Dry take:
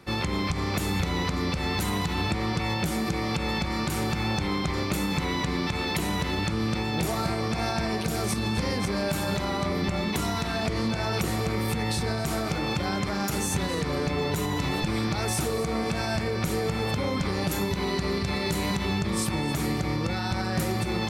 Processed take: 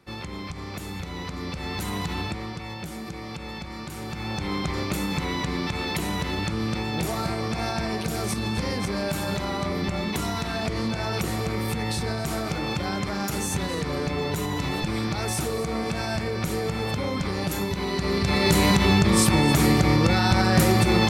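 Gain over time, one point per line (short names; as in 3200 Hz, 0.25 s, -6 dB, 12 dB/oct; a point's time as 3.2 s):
1.06 s -7.5 dB
2.12 s -1 dB
2.59 s -8 dB
3.97 s -8 dB
4.56 s 0 dB
17.9 s 0 dB
18.53 s +8.5 dB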